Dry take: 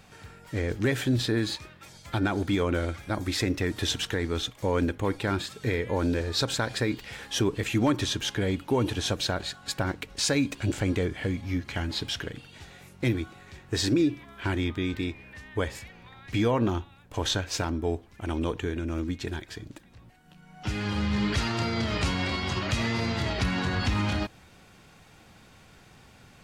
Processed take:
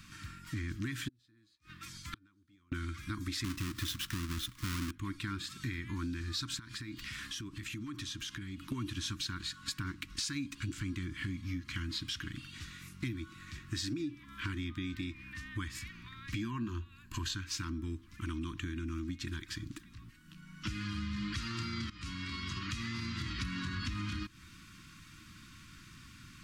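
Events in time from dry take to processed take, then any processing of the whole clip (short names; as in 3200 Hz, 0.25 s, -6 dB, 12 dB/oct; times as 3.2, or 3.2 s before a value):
1.08–2.72 flipped gate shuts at -24 dBFS, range -40 dB
3.44–4.91 half-waves squared off
6.59–8.72 compressor 10:1, threshold -38 dBFS
16.41–17.34 ripple EQ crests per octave 1.4, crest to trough 8 dB
21.9–23.47 fade in, from -19.5 dB
whole clip: elliptic band-stop 320–1100 Hz, stop band 40 dB; bell 5200 Hz +2 dB; compressor 5:1, threshold -37 dBFS; gain +1 dB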